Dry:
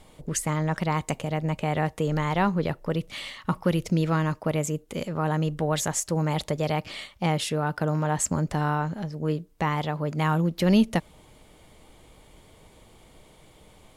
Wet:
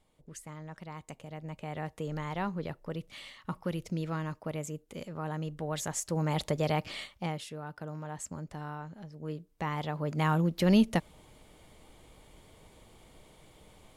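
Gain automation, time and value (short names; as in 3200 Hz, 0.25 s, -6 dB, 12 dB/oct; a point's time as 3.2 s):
0.87 s -18.5 dB
2.02 s -10.5 dB
5.58 s -10.5 dB
6.45 s -3 dB
7.03 s -3 dB
7.46 s -15 dB
8.91 s -15 dB
10.19 s -3.5 dB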